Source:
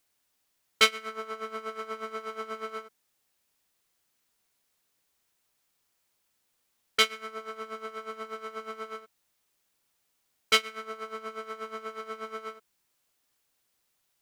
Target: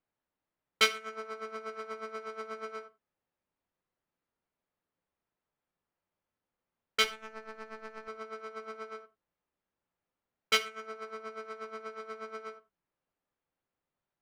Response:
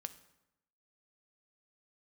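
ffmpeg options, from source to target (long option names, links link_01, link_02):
-filter_complex "[0:a]asettb=1/sr,asplit=3[link_01][link_02][link_03];[link_01]atrim=end=7.044[link_04];[link_02]atrim=start=7.04:end=8.08,asetpts=PTS-STARTPTS,afade=type=in:duration=0.004:curve=qsin,afade=type=out:start_time=1.036:duration=0.004:curve=qsin,aeval=exprs='if(lt(val(0),0),0.251*val(0),val(0))':channel_layout=same[link_05];[link_03]atrim=start=8.076[link_06];[link_04][link_05]acrossfade=duration=0.004:curve1=hsin:curve2=qsin[link_07];[link_07][link_06]acrossfade=duration=0.004:curve1=qsin:curve2=hsin,adynamicsmooth=sensitivity=7.5:basefreq=1600[link_08];[1:a]atrim=start_sample=2205,atrim=end_sample=4410[link_09];[link_08][link_09]afir=irnorm=-1:irlink=0"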